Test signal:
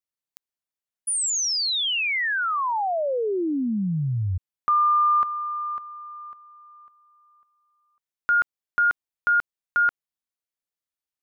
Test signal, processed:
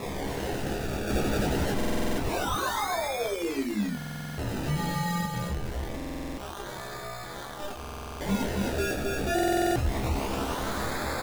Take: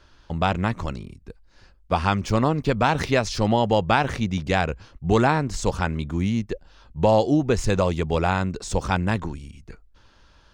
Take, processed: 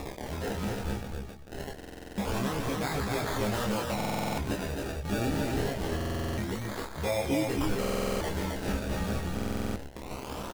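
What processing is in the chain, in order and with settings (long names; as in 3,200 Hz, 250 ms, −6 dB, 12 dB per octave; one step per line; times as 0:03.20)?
spike at every zero crossing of −19.5 dBFS
brickwall limiter −15 dBFS
sample-and-hold swept by an LFO 29×, swing 100% 0.25 Hz
double-tracking delay 15 ms −4.5 dB
multi-voice chorus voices 6, 0.35 Hz, delay 27 ms, depth 2.5 ms
on a send: loudspeakers that aren't time-aligned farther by 41 metres −12 dB, 91 metres −3 dB
on the sum: buffer that repeats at 0:01.76/0:03.96/0:05.96/0:07.79/0:09.34, samples 2,048, times 8
level −6 dB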